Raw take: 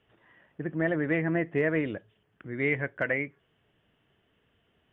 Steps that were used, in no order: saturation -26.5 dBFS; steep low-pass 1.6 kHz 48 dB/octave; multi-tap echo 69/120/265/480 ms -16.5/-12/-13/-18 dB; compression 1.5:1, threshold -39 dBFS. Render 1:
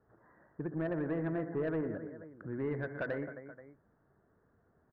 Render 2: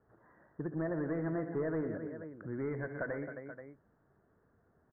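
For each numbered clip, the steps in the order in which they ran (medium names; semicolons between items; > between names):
steep low-pass > compression > multi-tap echo > saturation; multi-tap echo > compression > saturation > steep low-pass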